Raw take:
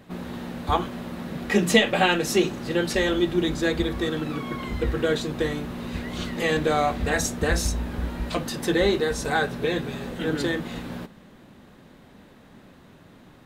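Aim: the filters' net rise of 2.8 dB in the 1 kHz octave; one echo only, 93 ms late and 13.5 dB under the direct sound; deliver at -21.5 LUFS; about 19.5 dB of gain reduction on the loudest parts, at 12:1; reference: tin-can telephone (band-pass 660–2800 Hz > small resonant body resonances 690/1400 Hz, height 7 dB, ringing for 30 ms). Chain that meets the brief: peaking EQ 1 kHz +6 dB; compression 12:1, threshold -32 dBFS; band-pass 660–2800 Hz; delay 93 ms -13.5 dB; small resonant body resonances 690/1400 Hz, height 7 dB, ringing for 30 ms; trim +19 dB

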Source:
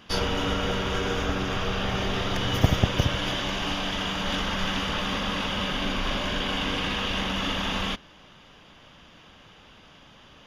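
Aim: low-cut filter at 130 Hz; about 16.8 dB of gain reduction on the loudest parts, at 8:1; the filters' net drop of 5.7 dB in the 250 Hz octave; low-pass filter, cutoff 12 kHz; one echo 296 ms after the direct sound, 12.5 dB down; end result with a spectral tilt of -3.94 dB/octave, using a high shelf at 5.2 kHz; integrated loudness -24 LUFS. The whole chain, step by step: high-pass 130 Hz; low-pass 12 kHz; peaking EQ 250 Hz -7 dB; treble shelf 5.2 kHz -8.5 dB; compression 8:1, threshold -37 dBFS; delay 296 ms -12.5 dB; trim +15 dB

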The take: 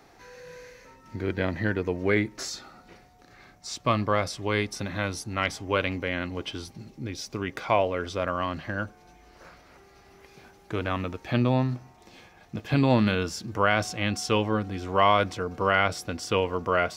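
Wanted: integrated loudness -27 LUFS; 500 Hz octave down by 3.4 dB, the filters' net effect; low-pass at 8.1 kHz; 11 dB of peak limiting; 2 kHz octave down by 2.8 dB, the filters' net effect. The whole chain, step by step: low-pass 8.1 kHz; peaking EQ 500 Hz -4 dB; peaking EQ 2 kHz -3.5 dB; trim +6.5 dB; peak limiter -13.5 dBFS

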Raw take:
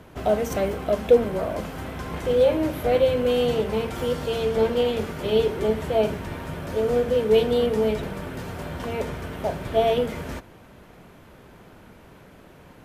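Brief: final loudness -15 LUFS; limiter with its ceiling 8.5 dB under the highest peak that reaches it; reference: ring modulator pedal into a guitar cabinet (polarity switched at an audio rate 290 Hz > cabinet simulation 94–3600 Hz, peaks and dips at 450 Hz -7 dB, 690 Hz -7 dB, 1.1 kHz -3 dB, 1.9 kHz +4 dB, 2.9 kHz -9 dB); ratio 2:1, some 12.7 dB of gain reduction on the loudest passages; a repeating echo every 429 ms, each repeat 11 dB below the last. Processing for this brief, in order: compression 2:1, threshold -34 dBFS; peak limiter -25.5 dBFS; feedback delay 429 ms, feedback 28%, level -11 dB; polarity switched at an audio rate 290 Hz; cabinet simulation 94–3600 Hz, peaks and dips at 450 Hz -7 dB, 690 Hz -7 dB, 1.1 kHz -3 dB, 1.9 kHz +4 dB, 2.9 kHz -9 dB; trim +21.5 dB

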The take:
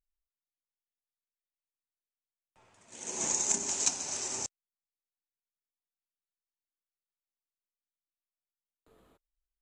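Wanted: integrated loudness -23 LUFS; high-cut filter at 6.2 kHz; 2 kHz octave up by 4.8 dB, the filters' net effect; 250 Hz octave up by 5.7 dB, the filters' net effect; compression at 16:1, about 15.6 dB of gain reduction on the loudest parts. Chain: low-pass 6.2 kHz; peaking EQ 250 Hz +7 dB; peaking EQ 2 kHz +6 dB; compression 16:1, threshold -41 dBFS; trim +21 dB

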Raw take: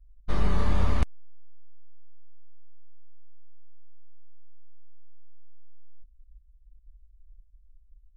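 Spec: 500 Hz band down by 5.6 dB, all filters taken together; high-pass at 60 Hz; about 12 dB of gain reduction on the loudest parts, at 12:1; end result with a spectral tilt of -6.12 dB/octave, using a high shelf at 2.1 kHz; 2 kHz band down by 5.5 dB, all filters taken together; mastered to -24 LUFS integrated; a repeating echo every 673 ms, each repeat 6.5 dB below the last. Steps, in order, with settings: high-pass 60 Hz; peaking EQ 500 Hz -7 dB; peaking EQ 2 kHz -9 dB; treble shelf 2.1 kHz +4.5 dB; compression 12:1, threshold -35 dBFS; feedback delay 673 ms, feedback 47%, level -6.5 dB; trim +20.5 dB

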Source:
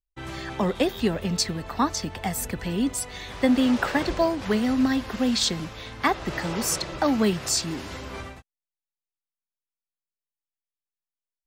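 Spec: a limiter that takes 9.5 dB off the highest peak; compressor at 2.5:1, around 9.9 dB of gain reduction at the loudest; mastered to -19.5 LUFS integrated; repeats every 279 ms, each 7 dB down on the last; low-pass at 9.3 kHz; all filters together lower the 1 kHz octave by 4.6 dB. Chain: low-pass 9.3 kHz; peaking EQ 1 kHz -6 dB; compression 2.5:1, threshold -33 dBFS; peak limiter -28 dBFS; feedback delay 279 ms, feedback 45%, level -7 dB; trim +16.5 dB

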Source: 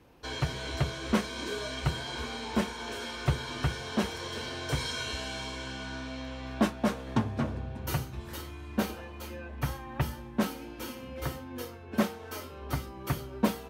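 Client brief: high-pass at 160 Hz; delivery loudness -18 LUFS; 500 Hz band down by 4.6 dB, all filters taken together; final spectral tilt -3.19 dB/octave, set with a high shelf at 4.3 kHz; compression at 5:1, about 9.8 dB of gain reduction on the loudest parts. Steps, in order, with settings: high-pass 160 Hz; peaking EQ 500 Hz -6 dB; treble shelf 4.3 kHz +7.5 dB; compression 5:1, threshold -34 dBFS; trim +20.5 dB

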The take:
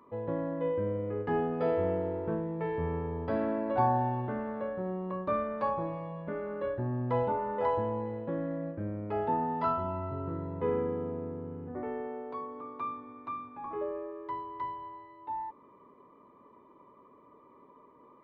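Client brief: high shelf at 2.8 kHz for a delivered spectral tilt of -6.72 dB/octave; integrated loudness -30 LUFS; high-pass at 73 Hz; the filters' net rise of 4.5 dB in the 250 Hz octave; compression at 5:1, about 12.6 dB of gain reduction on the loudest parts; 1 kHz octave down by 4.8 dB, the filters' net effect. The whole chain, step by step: high-pass 73 Hz; peaking EQ 250 Hz +6 dB; peaking EQ 1 kHz -5.5 dB; treble shelf 2.8 kHz -7 dB; compression 5:1, threshold -39 dBFS; trim +12.5 dB

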